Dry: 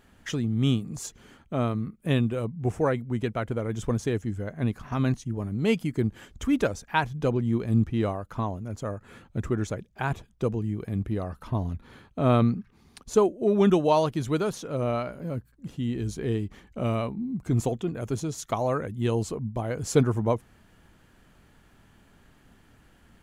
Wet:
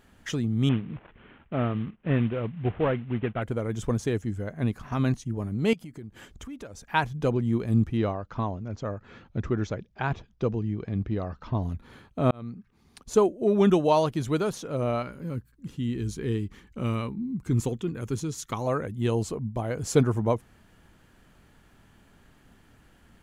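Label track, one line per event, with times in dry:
0.690000	3.420000	CVSD 16 kbps
5.730000	6.900000	compressor 4:1, threshold -40 dBFS
7.970000	11.630000	steep low-pass 5900 Hz
12.310000	13.140000	fade in
15.020000	18.670000	bell 660 Hz -14 dB 0.45 oct

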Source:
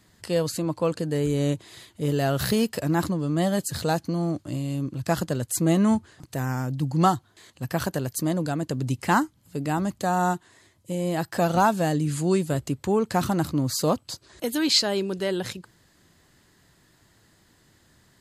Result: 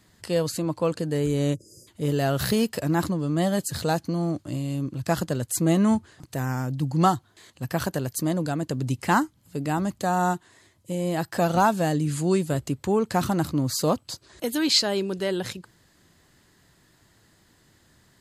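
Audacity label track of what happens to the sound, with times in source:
1.550000	1.870000	spectral delete 610–4800 Hz

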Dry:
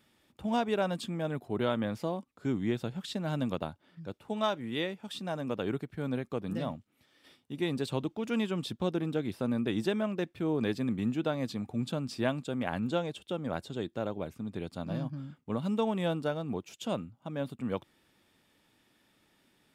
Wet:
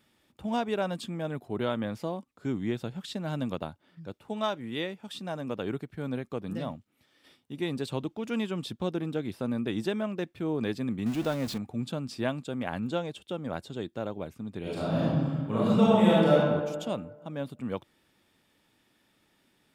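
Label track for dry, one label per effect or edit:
11.060000	11.580000	zero-crossing step of -35 dBFS
14.610000	16.370000	reverb throw, RT60 1.5 s, DRR -9 dB

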